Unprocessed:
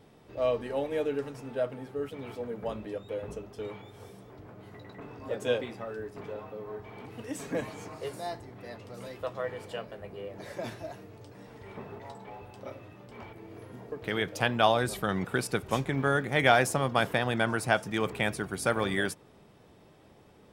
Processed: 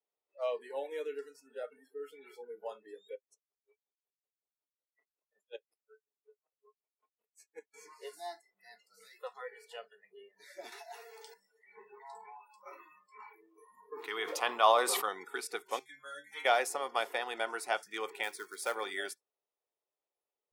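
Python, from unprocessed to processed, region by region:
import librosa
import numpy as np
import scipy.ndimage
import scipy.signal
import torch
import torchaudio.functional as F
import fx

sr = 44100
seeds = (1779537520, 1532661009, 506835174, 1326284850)

y = fx.chain(x, sr, fx.level_steps(step_db=15),
    fx.high_shelf(hz=9300.0, db=-5.0),
    fx.tremolo_db(hz=5.4, depth_db=36), at=(3.15, 7.74))
y = fx.chain(y, sr, fx.highpass(hz=430.0, slope=24),
    fx.env_flatten(amount_pct=70), at=(10.72, 11.34))
y = fx.chain(y, sr, fx.peak_eq(hz=1100.0, db=10.0, octaves=0.34),
    fx.sustainer(db_per_s=31.0), at=(11.94, 15.09))
y = fx.chain(y, sr, fx.high_shelf(hz=2200.0, db=6.5),
    fx.stiff_resonator(f0_hz=69.0, decay_s=0.58, stiffness=0.008), at=(15.79, 16.45))
y = fx.chain(y, sr, fx.low_shelf(hz=340.0, db=-4.0),
    fx.quant_float(bits=2), at=(18.23, 18.75))
y = scipy.signal.sosfilt(scipy.signal.butter(4, 430.0, 'highpass', fs=sr, output='sos'), y)
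y = fx.notch(y, sr, hz=1600.0, q=9.6)
y = fx.noise_reduce_blind(y, sr, reduce_db=30)
y = y * librosa.db_to_amplitude(-5.0)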